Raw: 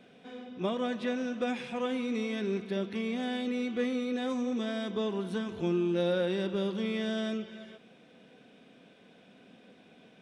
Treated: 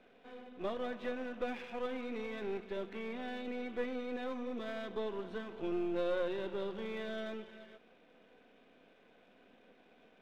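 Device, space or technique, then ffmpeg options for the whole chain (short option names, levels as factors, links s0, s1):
crystal radio: -af "highpass=310,lowpass=2700,aeval=exprs='if(lt(val(0),0),0.447*val(0),val(0))':c=same,volume=0.841"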